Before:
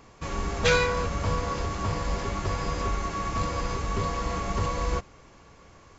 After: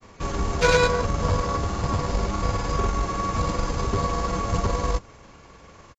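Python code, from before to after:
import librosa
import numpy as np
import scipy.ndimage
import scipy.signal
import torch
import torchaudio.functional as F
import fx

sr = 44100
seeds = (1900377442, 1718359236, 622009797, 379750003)

y = fx.dynamic_eq(x, sr, hz=2200.0, q=1.1, threshold_db=-47.0, ratio=4.0, max_db=-5)
y = fx.tube_stage(y, sr, drive_db=15.0, bias=0.5)
y = fx.granulator(y, sr, seeds[0], grain_ms=100.0, per_s=20.0, spray_ms=100.0, spread_st=0)
y = y * 10.0 ** (8.0 / 20.0)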